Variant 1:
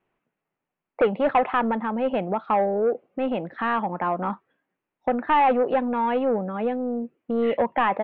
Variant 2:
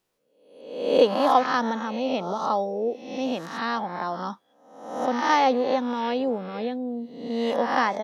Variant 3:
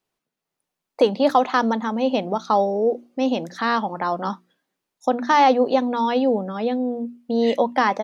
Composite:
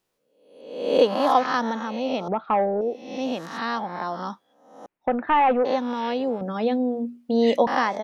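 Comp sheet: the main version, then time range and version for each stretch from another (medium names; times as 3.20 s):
2
2.28–2.81 s: from 1
4.86–5.65 s: from 1
6.41–7.67 s: from 3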